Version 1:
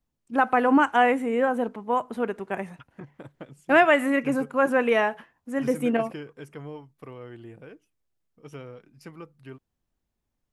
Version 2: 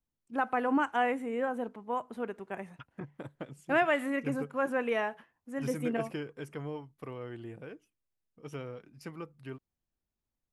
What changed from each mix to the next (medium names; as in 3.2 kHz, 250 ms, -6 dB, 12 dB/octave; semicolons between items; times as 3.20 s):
first voice -9.0 dB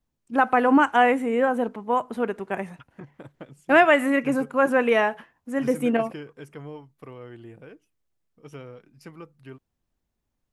first voice +10.5 dB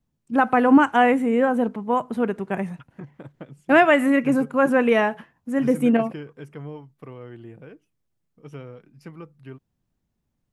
second voice: add tone controls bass -5 dB, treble -5 dB; master: add peaking EQ 150 Hz +9.5 dB 1.6 oct